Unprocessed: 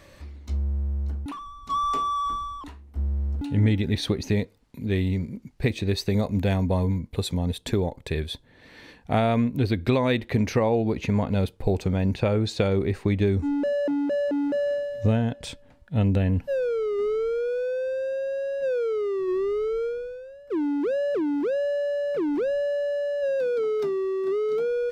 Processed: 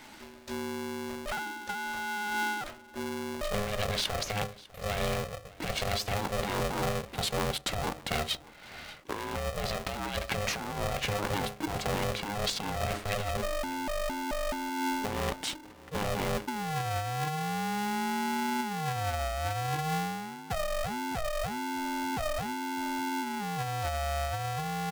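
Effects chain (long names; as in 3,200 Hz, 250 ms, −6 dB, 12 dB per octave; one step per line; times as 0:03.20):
parametric band 73 Hz −14 dB 2.9 octaves
mains-hum notches 50/100/150/200/250/300/350/400/450 Hz
compressor whose output falls as the input rises −32 dBFS, ratio −1
on a send: single-tap delay 600 ms −21.5 dB
on the sum: ring modulator with a square carrier 310 Hz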